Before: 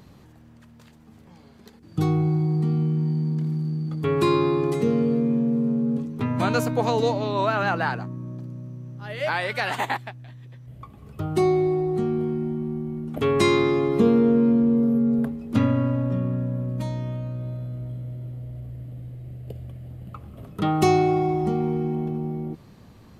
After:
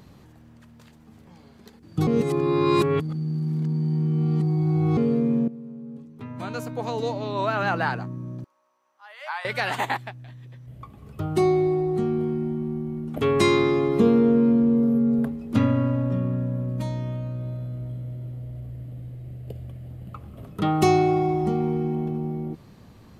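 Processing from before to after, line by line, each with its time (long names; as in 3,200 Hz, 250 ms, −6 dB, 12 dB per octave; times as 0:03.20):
0:02.07–0:04.97: reverse
0:05.48–0:07.79: fade in quadratic, from −16 dB
0:08.44–0:09.45: four-pole ladder high-pass 810 Hz, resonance 50%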